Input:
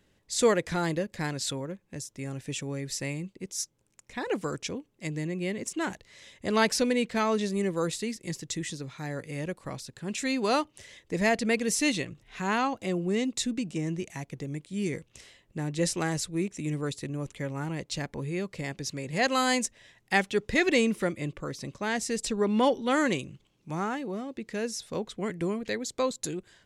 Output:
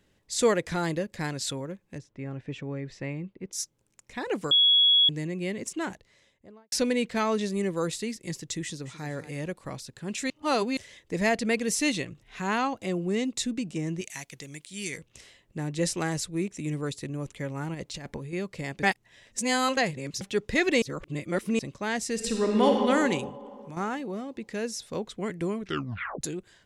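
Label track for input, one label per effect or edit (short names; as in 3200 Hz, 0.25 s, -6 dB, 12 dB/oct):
1.980000	3.530000	LPF 2200 Hz
4.510000	5.090000	bleep 3350 Hz -16.5 dBFS
5.630000	6.720000	studio fade out
8.630000	9.070000	echo throw 0.22 s, feedback 35%, level -13 dB
10.300000	10.770000	reverse
14.010000	14.980000	tilt shelf lows -9.5 dB, about 1300 Hz
17.740000	18.330000	negative-ratio compressor -36 dBFS, ratio -0.5
18.830000	20.210000	reverse
20.820000	21.590000	reverse
22.130000	22.790000	reverb throw, RT60 2.4 s, DRR 0.5 dB
23.290000	23.770000	compressor, threshold -38 dBFS
25.570000	25.570000	tape stop 0.64 s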